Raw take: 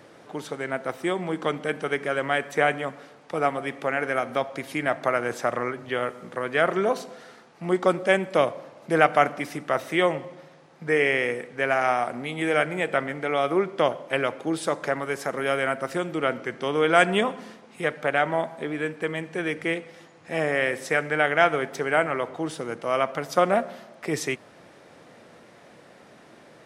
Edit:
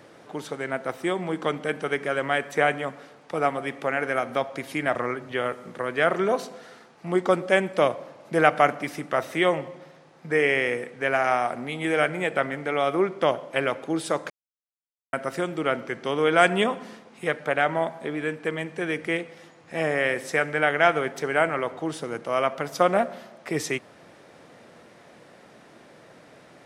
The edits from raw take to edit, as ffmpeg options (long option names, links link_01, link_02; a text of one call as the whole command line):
ffmpeg -i in.wav -filter_complex "[0:a]asplit=4[link_01][link_02][link_03][link_04];[link_01]atrim=end=4.952[link_05];[link_02]atrim=start=5.518:end=14.87,asetpts=PTS-STARTPTS,afade=type=out:start_time=9.348:duration=0.004:curve=hsin[link_06];[link_03]atrim=start=14.87:end=15.7,asetpts=PTS-STARTPTS,volume=0[link_07];[link_04]atrim=start=15.7,asetpts=PTS-STARTPTS,afade=type=in:duration=0.004:curve=hsin[link_08];[link_06][link_07][link_08]concat=n=3:v=0:a=1[link_09];[link_05][link_09]acrossfade=duration=0.004:curve1=hsin:curve2=hsin" out.wav